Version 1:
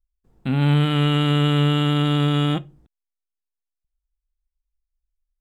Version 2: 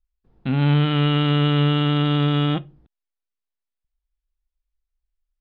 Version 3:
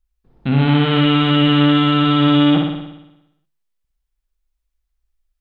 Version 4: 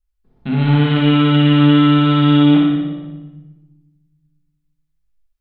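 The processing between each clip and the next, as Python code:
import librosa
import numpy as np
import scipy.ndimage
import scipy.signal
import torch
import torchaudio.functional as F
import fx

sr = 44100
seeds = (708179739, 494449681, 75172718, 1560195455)

y1 = scipy.signal.sosfilt(scipy.signal.butter(4, 4500.0, 'lowpass', fs=sr, output='sos'), x)
y2 = fx.room_flutter(y1, sr, wall_m=10.0, rt60_s=0.92)
y2 = y2 * 10.0 ** (4.5 / 20.0)
y3 = fx.room_shoebox(y2, sr, seeds[0], volume_m3=790.0, walls='mixed', distance_m=1.4)
y3 = y3 * 10.0 ** (-5.0 / 20.0)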